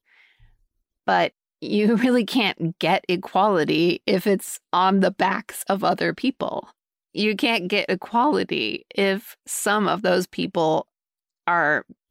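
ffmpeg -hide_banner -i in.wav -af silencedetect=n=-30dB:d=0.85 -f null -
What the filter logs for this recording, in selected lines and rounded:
silence_start: 0.00
silence_end: 1.08 | silence_duration: 1.08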